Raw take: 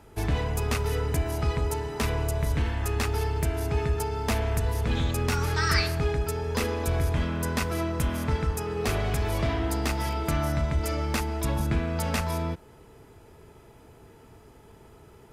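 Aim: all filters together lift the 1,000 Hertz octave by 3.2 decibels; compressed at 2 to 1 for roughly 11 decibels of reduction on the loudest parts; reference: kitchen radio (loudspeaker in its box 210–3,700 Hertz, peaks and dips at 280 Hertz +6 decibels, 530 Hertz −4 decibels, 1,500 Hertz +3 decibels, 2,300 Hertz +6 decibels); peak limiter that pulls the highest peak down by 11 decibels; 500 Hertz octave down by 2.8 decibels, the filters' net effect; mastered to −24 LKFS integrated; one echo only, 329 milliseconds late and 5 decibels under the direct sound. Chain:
parametric band 500 Hz −4 dB
parametric band 1,000 Hz +4.5 dB
downward compressor 2 to 1, threshold −42 dBFS
brickwall limiter −34.5 dBFS
loudspeaker in its box 210–3,700 Hz, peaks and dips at 280 Hz +6 dB, 530 Hz −4 dB, 1,500 Hz +3 dB, 2,300 Hz +6 dB
single-tap delay 329 ms −5 dB
level +21 dB

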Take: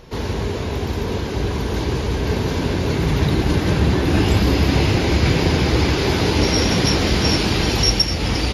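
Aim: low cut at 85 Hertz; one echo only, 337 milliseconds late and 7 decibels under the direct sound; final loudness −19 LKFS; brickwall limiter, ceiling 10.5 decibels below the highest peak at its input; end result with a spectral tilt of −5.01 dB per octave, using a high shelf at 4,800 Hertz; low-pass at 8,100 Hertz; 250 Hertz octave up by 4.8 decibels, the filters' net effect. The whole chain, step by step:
high-pass filter 85 Hz
low-pass filter 8,100 Hz
parametric band 250 Hz +6.5 dB
high-shelf EQ 4,800 Hz +8.5 dB
brickwall limiter −11.5 dBFS
single-tap delay 337 ms −7 dB
level +0.5 dB

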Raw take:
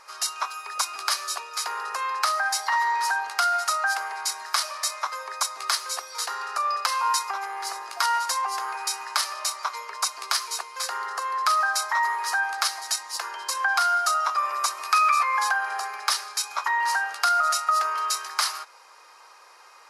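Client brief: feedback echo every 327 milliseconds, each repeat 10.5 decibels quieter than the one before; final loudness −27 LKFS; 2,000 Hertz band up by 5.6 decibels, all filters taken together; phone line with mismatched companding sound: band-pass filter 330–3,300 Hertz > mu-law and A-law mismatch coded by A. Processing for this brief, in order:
band-pass filter 330–3,300 Hz
parametric band 2,000 Hz +8 dB
repeating echo 327 ms, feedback 30%, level −10.5 dB
mu-law and A-law mismatch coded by A
level −4 dB

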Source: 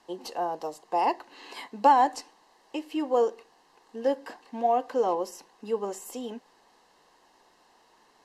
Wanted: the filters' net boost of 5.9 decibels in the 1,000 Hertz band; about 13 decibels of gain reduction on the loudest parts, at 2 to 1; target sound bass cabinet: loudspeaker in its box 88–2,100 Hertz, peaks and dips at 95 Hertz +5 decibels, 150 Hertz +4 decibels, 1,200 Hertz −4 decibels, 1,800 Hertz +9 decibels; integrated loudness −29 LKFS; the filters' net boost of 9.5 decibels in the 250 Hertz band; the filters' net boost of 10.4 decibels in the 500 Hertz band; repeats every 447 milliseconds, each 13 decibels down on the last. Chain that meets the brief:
parametric band 250 Hz +8 dB
parametric band 500 Hz +9 dB
parametric band 1,000 Hz +3.5 dB
downward compressor 2 to 1, threshold −33 dBFS
loudspeaker in its box 88–2,100 Hz, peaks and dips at 95 Hz +5 dB, 150 Hz +4 dB, 1,200 Hz −4 dB, 1,800 Hz +9 dB
repeating echo 447 ms, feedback 22%, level −13 dB
level +2.5 dB

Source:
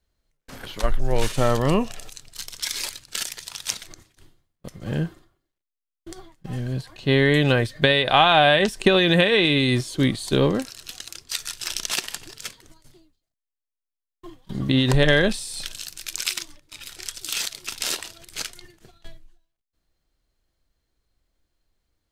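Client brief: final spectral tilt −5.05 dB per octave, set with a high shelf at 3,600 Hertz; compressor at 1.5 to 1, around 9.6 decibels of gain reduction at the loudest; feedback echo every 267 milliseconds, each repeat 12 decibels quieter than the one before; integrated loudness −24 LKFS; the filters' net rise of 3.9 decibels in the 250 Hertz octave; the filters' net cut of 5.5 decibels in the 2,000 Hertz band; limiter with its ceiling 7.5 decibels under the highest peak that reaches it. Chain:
parametric band 250 Hz +5 dB
parametric band 2,000 Hz −5 dB
high-shelf EQ 3,600 Hz −7 dB
downward compressor 1.5 to 1, threshold −37 dBFS
brickwall limiter −19 dBFS
repeating echo 267 ms, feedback 25%, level −12 dB
level +8 dB

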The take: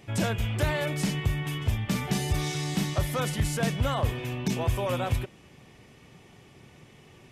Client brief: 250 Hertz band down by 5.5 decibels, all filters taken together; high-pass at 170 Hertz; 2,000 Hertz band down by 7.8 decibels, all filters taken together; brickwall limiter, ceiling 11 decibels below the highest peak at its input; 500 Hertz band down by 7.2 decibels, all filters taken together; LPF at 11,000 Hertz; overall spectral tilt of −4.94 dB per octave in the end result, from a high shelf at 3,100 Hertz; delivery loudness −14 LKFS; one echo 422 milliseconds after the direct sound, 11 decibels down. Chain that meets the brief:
high-pass filter 170 Hz
low-pass filter 11,000 Hz
parametric band 250 Hz −3.5 dB
parametric band 500 Hz −7.5 dB
parametric band 2,000 Hz −7.5 dB
high-shelf EQ 3,100 Hz −5.5 dB
brickwall limiter −30.5 dBFS
single-tap delay 422 ms −11 dB
level +25 dB

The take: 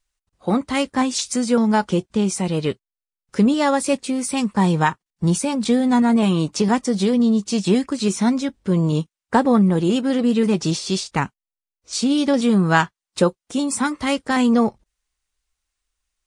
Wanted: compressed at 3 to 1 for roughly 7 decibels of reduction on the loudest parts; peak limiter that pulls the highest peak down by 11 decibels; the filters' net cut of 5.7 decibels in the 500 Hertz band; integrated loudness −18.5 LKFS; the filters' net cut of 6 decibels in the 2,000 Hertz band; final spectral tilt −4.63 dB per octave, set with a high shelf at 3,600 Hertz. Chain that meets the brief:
parametric band 500 Hz −6.5 dB
parametric band 2,000 Hz −9 dB
high-shelf EQ 3,600 Hz +4.5 dB
downward compressor 3 to 1, threshold −23 dBFS
level +11.5 dB
brickwall limiter −10 dBFS

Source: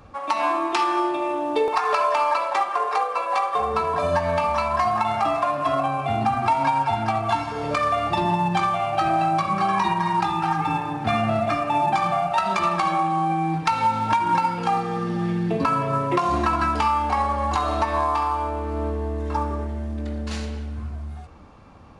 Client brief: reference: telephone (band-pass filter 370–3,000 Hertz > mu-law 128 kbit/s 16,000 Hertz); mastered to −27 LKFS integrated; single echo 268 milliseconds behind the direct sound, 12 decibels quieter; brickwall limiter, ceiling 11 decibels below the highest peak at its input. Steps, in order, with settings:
brickwall limiter −20.5 dBFS
band-pass filter 370–3,000 Hz
single-tap delay 268 ms −12 dB
level +2 dB
mu-law 128 kbit/s 16,000 Hz

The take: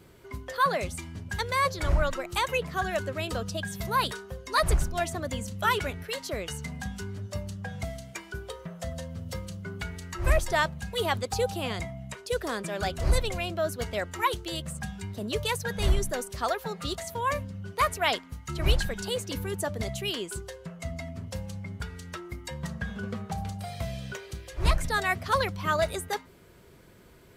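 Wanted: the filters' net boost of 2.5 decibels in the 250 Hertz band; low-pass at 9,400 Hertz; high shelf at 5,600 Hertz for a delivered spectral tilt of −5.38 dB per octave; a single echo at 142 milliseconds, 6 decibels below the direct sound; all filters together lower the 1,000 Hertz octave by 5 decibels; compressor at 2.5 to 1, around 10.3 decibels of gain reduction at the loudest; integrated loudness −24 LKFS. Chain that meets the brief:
low-pass filter 9,400 Hz
parametric band 250 Hz +4 dB
parametric band 1,000 Hz −6 dB
high-shelf EQ 5,600 Hz −7 dB
downward compressor 2.5 to 1, threshold −33 dBFS
single-tap delay 142 ms −6 dB
level +12 dB

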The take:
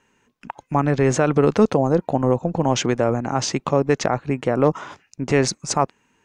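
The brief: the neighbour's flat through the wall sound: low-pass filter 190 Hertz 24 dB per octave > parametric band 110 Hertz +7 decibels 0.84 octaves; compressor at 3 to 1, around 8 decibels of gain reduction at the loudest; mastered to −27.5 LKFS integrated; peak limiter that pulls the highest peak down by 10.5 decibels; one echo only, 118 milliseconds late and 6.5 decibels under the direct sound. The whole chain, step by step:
downward compressor 3 to 1, threshold −22 dBFS
brickwall limiter −19 dBFS
low-pass filter 190 Hz 24 dB per octave
parametric band 110 Hz +7 dB 0.84 octaves
single-tap delay 118 ms −6.5 dB
level +5.5 dB

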